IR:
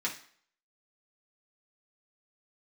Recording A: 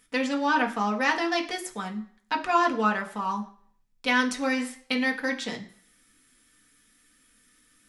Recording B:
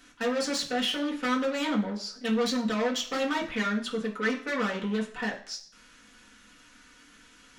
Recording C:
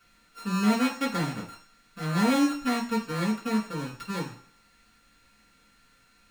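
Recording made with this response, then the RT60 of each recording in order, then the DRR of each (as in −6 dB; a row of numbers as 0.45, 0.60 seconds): B; non-exponential decay, non-exponential decay, non-exponential decay; 1.0, −4.5, −8.5 decibels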